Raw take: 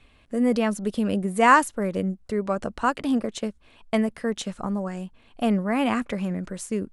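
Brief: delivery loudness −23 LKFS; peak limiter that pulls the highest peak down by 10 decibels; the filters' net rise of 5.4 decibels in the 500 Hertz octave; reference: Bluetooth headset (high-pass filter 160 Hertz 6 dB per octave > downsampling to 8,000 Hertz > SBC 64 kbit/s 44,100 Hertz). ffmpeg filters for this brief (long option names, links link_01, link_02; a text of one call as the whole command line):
ffmpeg -i in.wav -af "equalizer=frequency=500:width_type=o:gain=7,alimiter=limit=-12.5dB:level=0:latency=1,highpass=frequency=160:poles=1,aresample=8000,aresample=44100,volume=2.5dB" -ar 44100 -c:a sbc -b:a 64k out.sbc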